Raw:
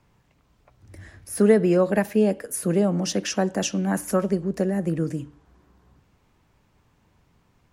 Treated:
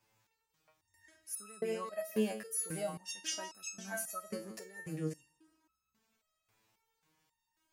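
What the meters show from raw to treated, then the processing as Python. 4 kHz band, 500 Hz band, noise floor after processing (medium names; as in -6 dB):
-10.0 dB, -18.0 dB, -85 dBFS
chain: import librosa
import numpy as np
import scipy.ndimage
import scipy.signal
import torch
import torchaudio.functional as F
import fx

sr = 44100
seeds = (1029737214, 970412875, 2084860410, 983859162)

p1 = fx.tilt_eq(x, sr, slope=3.0)
p2 = p1 + fx.echo_feedback(p1, sr, ms=166, feedback_pct=31, wet_db=-16, dry=0)
y = fx.resonator_held(p2, sr, hz=3.7, low_hz=110.0, high_hz=1300.0)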